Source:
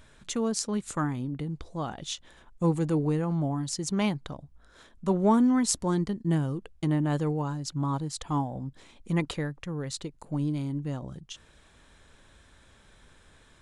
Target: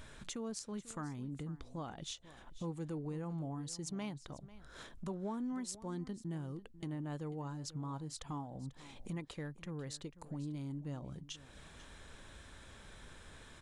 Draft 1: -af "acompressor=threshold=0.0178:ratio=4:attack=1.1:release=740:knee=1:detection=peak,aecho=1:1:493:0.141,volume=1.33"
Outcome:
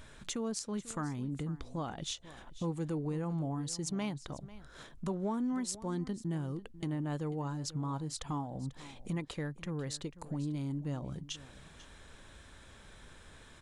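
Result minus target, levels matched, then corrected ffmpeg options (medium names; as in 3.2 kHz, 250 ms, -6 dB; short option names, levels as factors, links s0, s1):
compression: peak gain reduction -5.5 dB
-af "acompressor=threshold=0.0075:ratio=4:attack=1.1:release=740:knee=1:detection=peak,aecho=1:1:493:0.141,volume=1.33"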